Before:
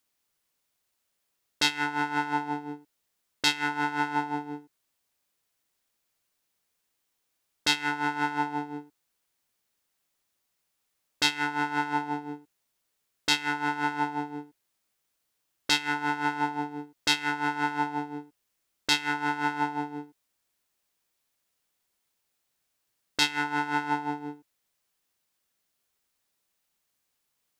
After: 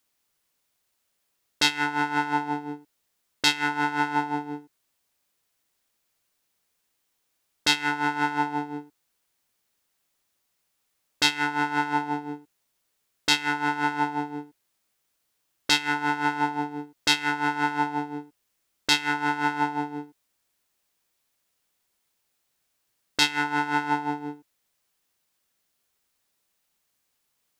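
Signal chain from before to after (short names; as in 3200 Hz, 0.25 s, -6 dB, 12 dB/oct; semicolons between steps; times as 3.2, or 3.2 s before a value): gain +3 dB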